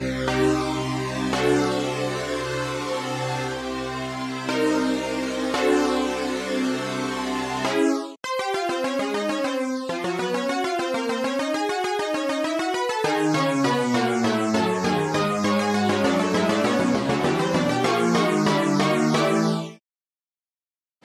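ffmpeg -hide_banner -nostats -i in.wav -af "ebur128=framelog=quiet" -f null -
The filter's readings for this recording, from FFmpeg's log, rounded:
Integrated loudness:
  I:         -23.3 LUFS
  Threshold: -33.4 LUFS
Loudness range:
  LRA:         4.1 LU
  Threshold: -43.4 LUFS
  LRA low:   -25.4 LUFS
  LRA high:  -21.3 LUFS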